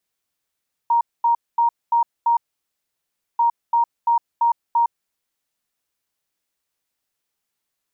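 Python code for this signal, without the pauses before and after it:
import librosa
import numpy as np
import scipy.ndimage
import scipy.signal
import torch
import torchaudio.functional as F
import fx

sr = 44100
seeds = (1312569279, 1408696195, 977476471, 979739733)

y = fx.beep_pattern(sr, wave='sine', hz=937.0, on_s=0.11, off_s=0.23, beeps=5, pause_s=1.02, groups=2, level_db=-13.5)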